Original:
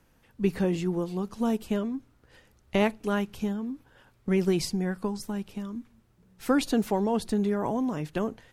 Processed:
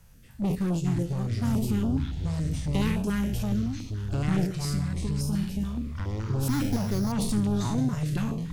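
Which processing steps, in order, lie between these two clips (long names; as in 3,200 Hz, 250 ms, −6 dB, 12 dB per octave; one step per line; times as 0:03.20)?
peak hold with a decay on every bin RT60 0.49 s
0:00.55–0:01.54: noise gate −28 dBFS, range −12 dB
bass and treble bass +11 dB, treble +8 dB
0:04.46–0:05.33: downward compressor 6 to 1, threshold −30 dBFS, peak gain reduction 14.5 dB
soft clipping −23 dBFS, distortion −8 dB
delay with pitch and tempo change per echo 245 ms, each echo −6 semitones, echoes 3
0:06.48–0:07.12: bad sample-rate conversion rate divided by 8×, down filtered, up hold
notch on a step sequencer 7.1 Hz 300–2,000 Hz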